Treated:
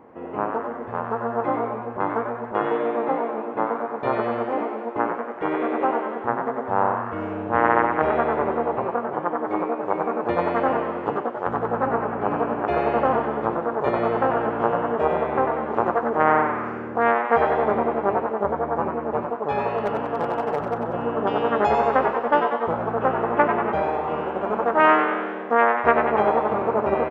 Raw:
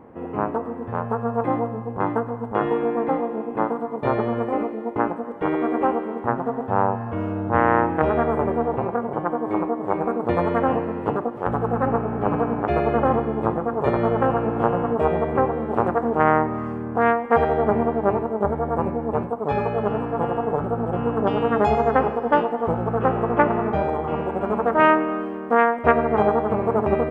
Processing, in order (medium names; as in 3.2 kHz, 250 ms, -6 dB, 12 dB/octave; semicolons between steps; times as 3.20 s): resampled via 16 kHz; 19.78–20.78 s: overload inside the chain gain 14.5 dB; bass shelf 210 Hz -11 dB; frequency-shifting echo 94 ms, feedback 51%, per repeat +130 Hz, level -7 dB